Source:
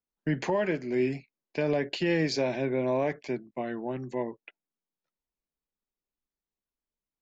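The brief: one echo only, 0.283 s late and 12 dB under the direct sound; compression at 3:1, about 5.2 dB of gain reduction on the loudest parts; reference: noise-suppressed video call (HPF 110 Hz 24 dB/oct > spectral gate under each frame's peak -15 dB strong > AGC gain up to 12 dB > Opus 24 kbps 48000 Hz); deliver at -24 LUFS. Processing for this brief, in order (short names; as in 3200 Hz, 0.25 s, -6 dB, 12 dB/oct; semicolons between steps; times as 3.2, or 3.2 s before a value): compressor 3:1, threshold -29 dBFS; HPF 110 Hz 24 dB/oct; echo 0.283 s -12 dB; spectral gate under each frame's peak -15 dB strong; AGC gain up to 12 dB; gain +10.5 dB; Opus 24 kbps 48000 Hz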